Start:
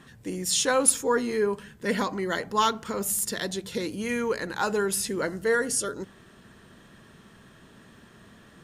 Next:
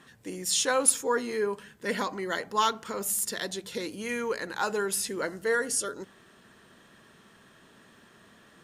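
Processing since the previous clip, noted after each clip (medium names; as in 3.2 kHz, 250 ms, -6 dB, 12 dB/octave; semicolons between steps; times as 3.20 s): bass shelf 190 Hz -11.5 dB; trim -1.5 dB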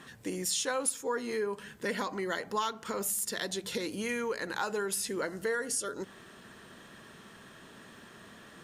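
compression 3:1, threshold -37 dBFS, peak gain reduction 15.5 dB; trim +4.5 dB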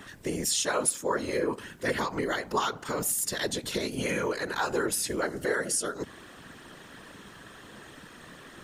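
whisper effect; trim +4 dB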